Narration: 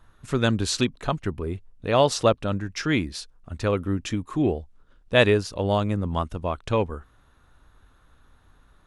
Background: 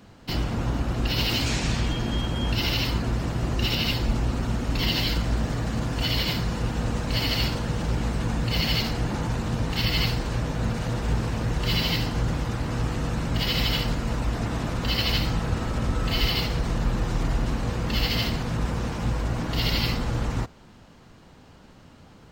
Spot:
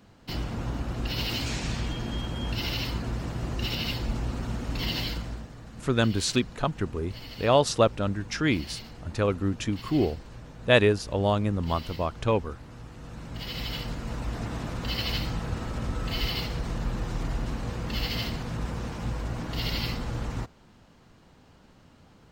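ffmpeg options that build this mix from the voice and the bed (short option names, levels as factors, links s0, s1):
-filter_complex "[0:a]adelay=5550,volume=0.841[s0];[1:a]volume=2.11,afade=t=out:st=5.01:d=0.48:silence=0.251189,afade=t=in:st=12.92:d=1.46:silence=0.251189[s1];[s0][s1]amix=inputs=2:normalize=0"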